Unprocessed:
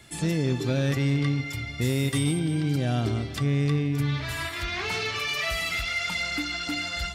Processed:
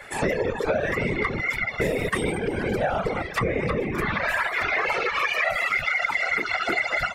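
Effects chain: whisperiser; band shelf 1000 Hz +15.5 dB 2.8 oct; compressor, threshold -19 dBFS, peak gain reduction 8.5 dB; echo with dull and thin repeats by turns 0.23 s, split 1200 Hz, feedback 52%, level -12.5 dB; reverb removal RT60 1.1 s

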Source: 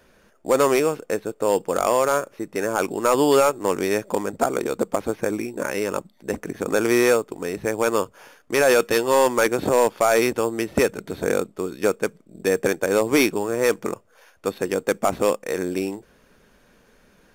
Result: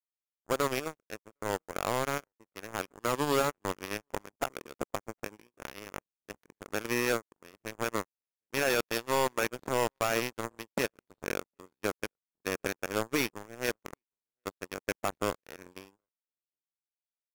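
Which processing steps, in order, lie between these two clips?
outdoor echo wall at 130 m, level -20 dB; power-law curve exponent 3; gain -6 dB

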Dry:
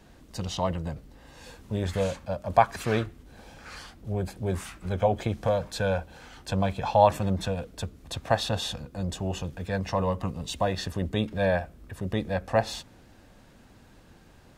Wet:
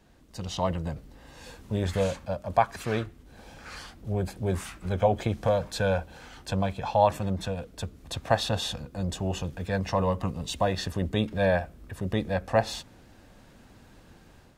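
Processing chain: AGC gain up to 7 dB; gain -6 dB

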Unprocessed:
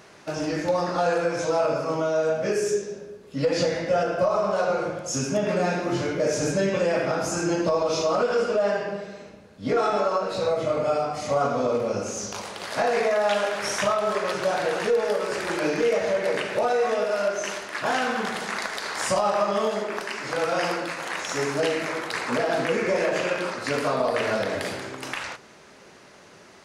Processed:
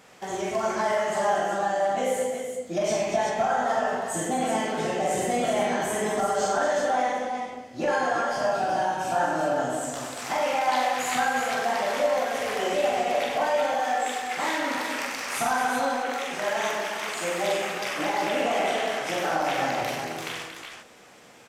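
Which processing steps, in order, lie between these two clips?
varispeed +24%; on a send: tapped delay 44/95/230/362/378 ms -4/-7/-8.5/-10/-7 dB; on the sum: gain -4.5 dB

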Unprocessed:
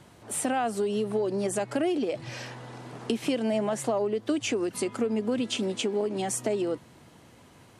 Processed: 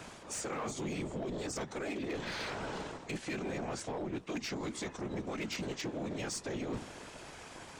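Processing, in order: spectral limiter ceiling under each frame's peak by 13 dB; notches 50/100/150/200/250/300/350 Hz; reverse; compressor 6:1, threshold -40 dBFS, peak gain reduction 17 dB; reverse; whisperiser; formant shift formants -4 st; in parallel at -4.5 dB: wavefolder -39 dBFS; on the sum: gain +1 dB

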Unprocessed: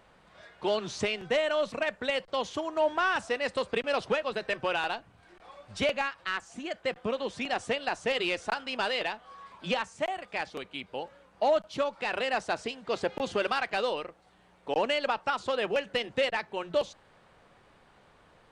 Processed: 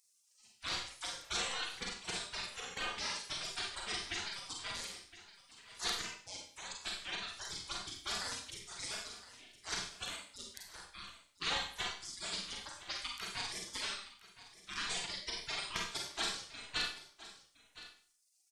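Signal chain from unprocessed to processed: spectral gate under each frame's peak -30 dB weak; reverb removal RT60 1.9 s; on a send: echo 1.015 s -16 dB; on the sum: Schroeder reverb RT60 0.49 s, combs from 32 ms, DRR -0.5 dB; gain +9 dB

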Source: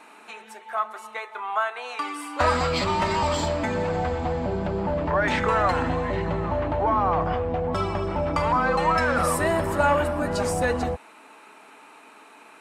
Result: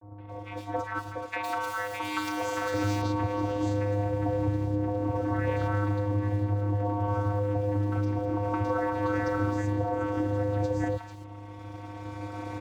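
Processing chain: recorder AGC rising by 7.5 dB/s; in parallel at -11 dB: decimation with a swept rate 30×, swing 60% 2 Hz; on the sum: hum 50 Hz, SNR 26 dB; vocoder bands 16, square 102 Hz; crossover distortion -52 dBFS; compressor 6:1, threshold -31 dBFS, peak gain reduction 13.5 dB; 1.16–2.74 tilt +3.5 dB/oct; three bands offset in time lows, mids, highs 0.17/0.28 s, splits 980/3200 Hz; gain +6.5 dB

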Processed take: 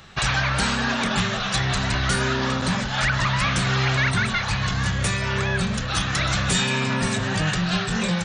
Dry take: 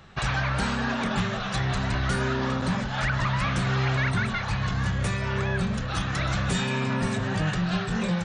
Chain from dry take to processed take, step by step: high shelf 2200 Hz +9.5 dB; gain +2 dB

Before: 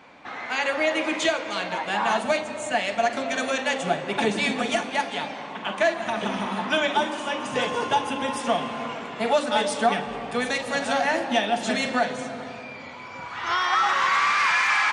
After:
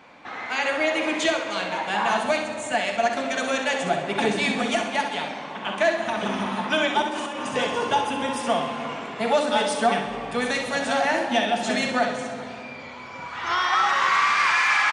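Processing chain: 7.02–7.49 negative-ratio compressor -32 dBFS, ratio -1; feedback echo 65 ms, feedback 48%, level -8 dB

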